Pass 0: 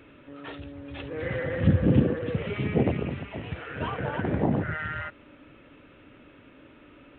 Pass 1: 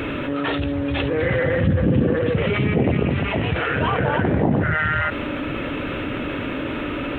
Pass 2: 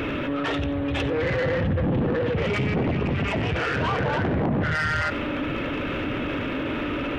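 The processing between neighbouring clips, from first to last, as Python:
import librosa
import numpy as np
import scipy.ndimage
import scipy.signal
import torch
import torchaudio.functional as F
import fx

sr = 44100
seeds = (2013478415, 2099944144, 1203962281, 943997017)

y1 = fx.env_flatten(x, sr, amount_pct=70)
y2 = 10.0 ** (-19.5 / 20.0) * np.tanh(y1 / 10.0 ** (-19.5 / 20.0))
y2 = y2 + 10.0 ** (-17.0 / 20.0) * np.pad(y2, (int(90 * sr / 1000.0), 0))[:len(y2)]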